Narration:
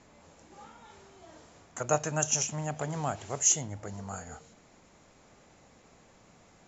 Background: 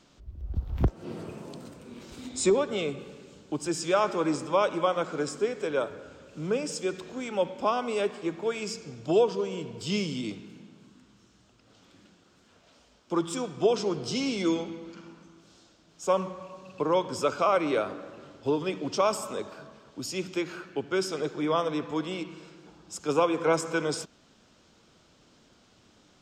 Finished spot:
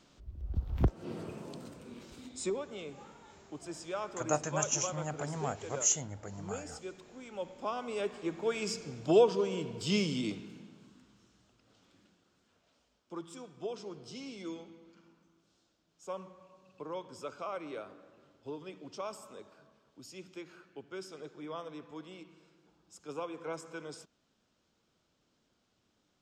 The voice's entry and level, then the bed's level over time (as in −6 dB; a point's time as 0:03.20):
2.40 s, −4.0 dB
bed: 0:01.89 −3 dB
0:02.63 −13.5 dB
0:07.29 −13.5 dB
0:08.70 −1 dB
0:10.38 −1 dB
0:13.28 −15.5 dB